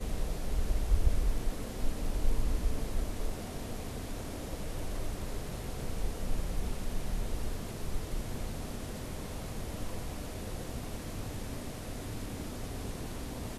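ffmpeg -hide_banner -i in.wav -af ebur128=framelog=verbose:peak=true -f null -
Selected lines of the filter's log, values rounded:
Integrated loudness:
  I:         -38.8 LUFS
  Threshold: -48.8 LUFS
Loudness range:
  LRA:         5.1 LU
  Threshold: -59.2 LUFS
  LRA low:   -40.9 LUFS
  LRA high:  -35.8 LUFS
True peak:
  Peak:      -14.0 dBFS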